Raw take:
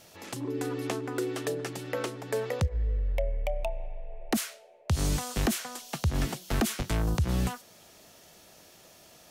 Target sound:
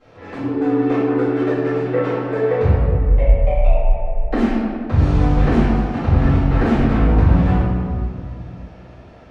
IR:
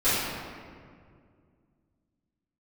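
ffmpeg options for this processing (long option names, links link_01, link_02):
-filter_complex "[0:a]lowpass=1800[link_01];[1:a]atrim=start_sample=2205[link_02];[link_01][link_02]afir=irnorm=-1:irlink=0,volume=-3dB"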